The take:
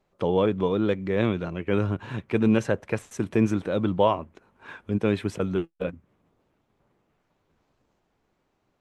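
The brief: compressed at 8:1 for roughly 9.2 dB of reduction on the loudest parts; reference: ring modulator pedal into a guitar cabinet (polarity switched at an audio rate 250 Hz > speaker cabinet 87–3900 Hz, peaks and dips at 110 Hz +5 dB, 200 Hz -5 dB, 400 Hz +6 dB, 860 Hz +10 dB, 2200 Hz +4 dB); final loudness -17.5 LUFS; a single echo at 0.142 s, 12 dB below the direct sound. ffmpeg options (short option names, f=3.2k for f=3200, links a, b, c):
-af "acompressor=threshold=-25dB:ratio=8,aecho=1:1:142:0.251,aeval=exprs='val(0)*sgn(sin(2*PI*250*n/s))':c=same,highpass=87,equalizer=f=110:t=q:w=4:g=5,equalizer=f=200:t=q:w=4:g=-5,equalizer=f=400:t=q:w=4:g=6,equalizer=f=860:t=q:w=4:g=10,equalizer=f=2.2k:t=q:w=4:g=4,lowpass=f=3.9k:w=0.5412,lowpass=f=3.9k:w=1.3066,volume=11.5dB"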